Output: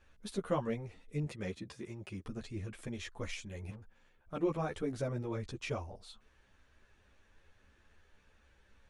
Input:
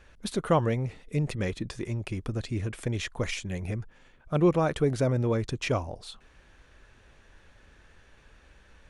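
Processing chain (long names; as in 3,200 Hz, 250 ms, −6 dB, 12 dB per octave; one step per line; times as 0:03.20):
0:01.25–0:02.25: high-pass filter 94 Hz
0:03.70–0:04.33: tube saturation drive 36 dB, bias 0.3
string-ensemble chorus
level −7 dB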